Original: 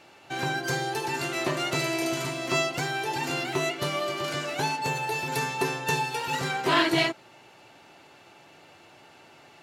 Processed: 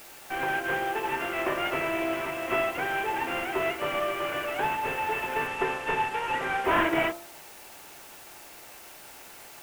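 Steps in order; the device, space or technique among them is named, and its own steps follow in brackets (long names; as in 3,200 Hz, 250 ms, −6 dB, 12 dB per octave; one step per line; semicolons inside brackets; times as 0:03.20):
army field radio (band-pass filter 360–2,900 Hz; variable-slope delta modulation 16 kbit/s; white noise bed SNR 19 dB)
0:05.47–0:06.65: low-pass filter 10,000 Hz 12 dB per octave
hum removal 67.93 Hz, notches 19
level +2.5 dB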